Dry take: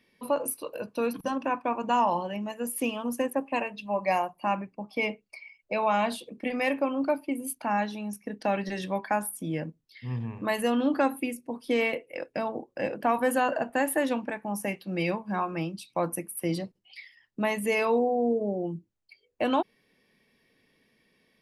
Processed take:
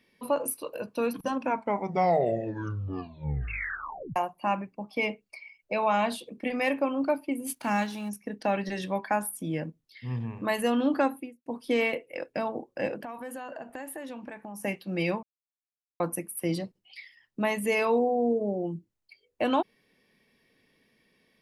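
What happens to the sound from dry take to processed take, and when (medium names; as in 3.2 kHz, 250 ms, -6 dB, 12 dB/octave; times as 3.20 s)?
1.34 s: tape stop 2.82 s
7.45–8.08 s: formants flattened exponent 0.6
10.97–11.46 s: studio fade out
13.00–14.64 s: compression 5:1, threshold -37 dBFS
15.23–16.00 s: mute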